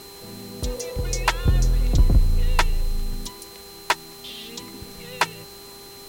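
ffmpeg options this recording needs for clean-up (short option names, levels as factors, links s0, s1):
-af "bandreject=f=398.9:t=h:w=4,bandreject=f=797.8:t=h:w=4,bandreject=f=1196.7:t=h:w=4,bandreject=f=4100:w=30,afftdn=nr=24:nf=-42"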